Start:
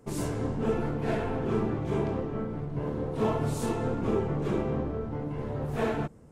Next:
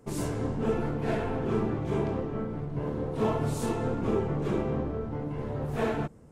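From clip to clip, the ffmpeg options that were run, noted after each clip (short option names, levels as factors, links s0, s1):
-af anull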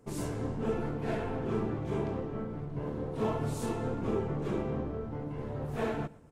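-af "aecho=1:1:120|240|360:0.075|0.0285|0.0108,volume=0.631"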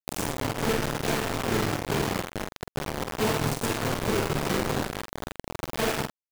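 -filter_complex "[0:a]acrusher=bits=4:mix=0:aa=0.000001,asplit=2[s0][s1];[s1]adelay=47,volume=0.398[s2];[s0][s2]amix=inputs=2:normalize=0,volume=1.58"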